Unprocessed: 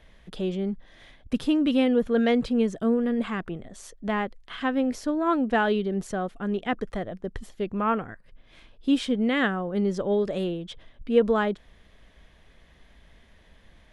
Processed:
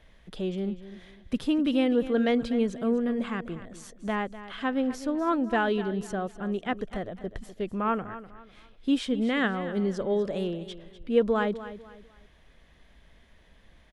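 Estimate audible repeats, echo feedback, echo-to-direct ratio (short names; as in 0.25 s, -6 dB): 3, 32%, -13.5 dB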